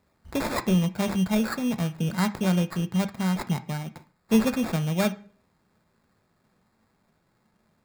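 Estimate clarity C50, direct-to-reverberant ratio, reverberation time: 16.5 dB, 9.0 dB, 0.45 s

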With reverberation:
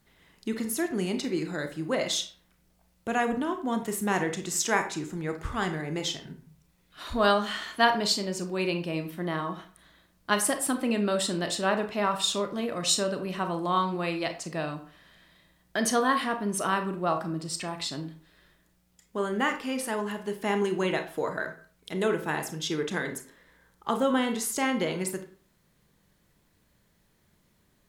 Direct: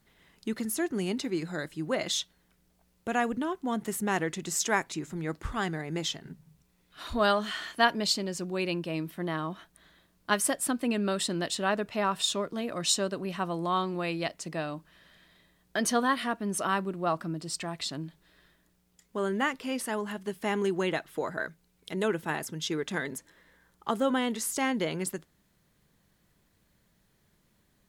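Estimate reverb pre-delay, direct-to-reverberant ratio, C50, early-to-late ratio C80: 27 ms, 6.0 dB, 10.5 dB, 15.0 dB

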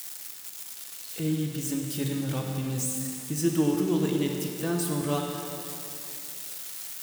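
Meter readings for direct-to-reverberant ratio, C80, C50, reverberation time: 1.5 dB, 3.5 dB, 2.5 dB, 2.8 s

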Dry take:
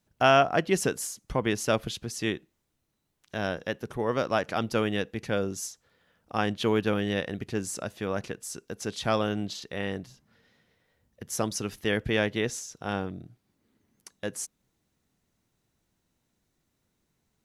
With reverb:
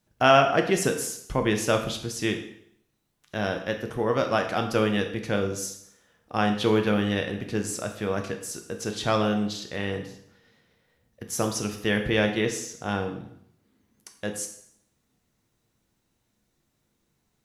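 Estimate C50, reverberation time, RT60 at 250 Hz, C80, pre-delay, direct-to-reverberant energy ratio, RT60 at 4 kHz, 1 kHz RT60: 8.5 dB, 0.70 s, 0.65 s, 11.5 dB, 4 ms, 4.0 dB, 0.65 s, 0.70 s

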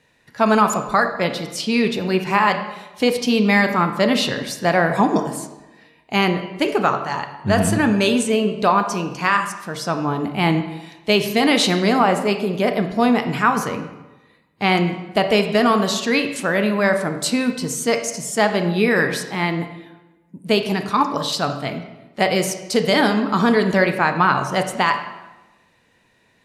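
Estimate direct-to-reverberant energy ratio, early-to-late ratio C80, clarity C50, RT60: 7.0 dB, 11.0 dB, 9.0 dB, 1.1 s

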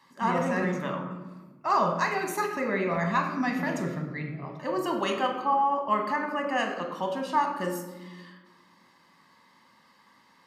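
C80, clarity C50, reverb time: 8.5 dB, 6.5 dB, 1.3 s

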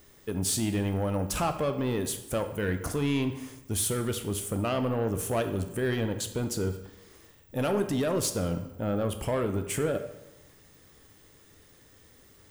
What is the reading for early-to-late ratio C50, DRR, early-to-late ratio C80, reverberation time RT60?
10.0 dB, 7.0 dB, 12.5 dB, 1.0 s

